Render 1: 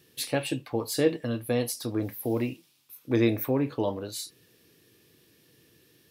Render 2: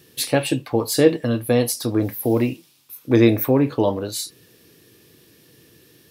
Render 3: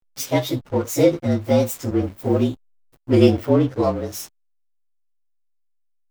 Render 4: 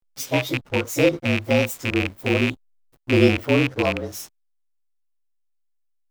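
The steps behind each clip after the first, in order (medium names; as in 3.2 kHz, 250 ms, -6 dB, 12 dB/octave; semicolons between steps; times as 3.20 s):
peaking EQ 2.6 kHz -2 dB 1.4 oct; trim +9 dB
frequency axis rescaled in octaves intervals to 112%; hysteresis with a dead band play -32 dBFS; trim +2 dB
rattle on loud lows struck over -24 dBFS, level -9 dBFS; trim -2.5 dB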